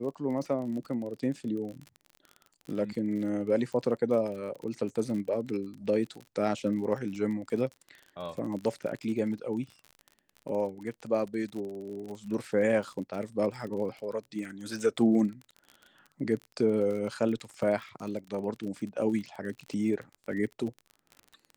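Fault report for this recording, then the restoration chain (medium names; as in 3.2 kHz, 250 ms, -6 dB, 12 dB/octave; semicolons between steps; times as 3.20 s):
crackle 39 per s -37 dBFS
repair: de-click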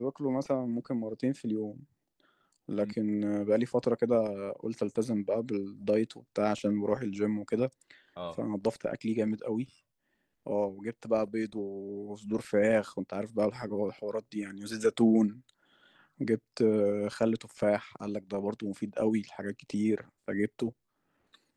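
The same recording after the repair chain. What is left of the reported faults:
nothing left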